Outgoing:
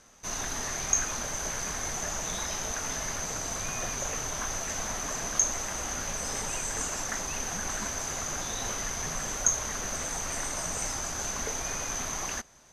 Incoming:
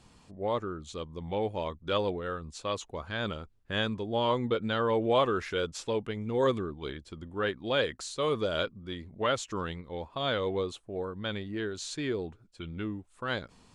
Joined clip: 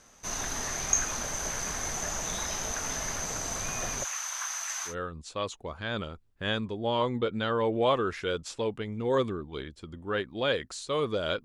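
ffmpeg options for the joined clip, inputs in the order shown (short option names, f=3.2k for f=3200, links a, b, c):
-filter_complex "[0:a]asplit=3[a][b][c];[a]afade=t=out:st=4.03:d=0.02[d];[b]highpass=f=980:w=0.5412,highpass=f=980:w=1.3066,afade=t=in:st=4.03:d=0.02,afade=t=out:st=4.95:d=0.02[e];[c]afade=t=in:st=4.95:d=0.02[f];[d][e][f]amix=inputs=3:normalize=0,apad=whole_dur=11.44,atrim=end=11.44,atrim=end=4.95,asetpts=PTS-STARTPTS[g];[1:a]atrim=start=2.14:end=8.73,asetpts=PTS-STARTPTS[h];[g][h]acrossfade=d=0.1:c1=tri:c2=tri"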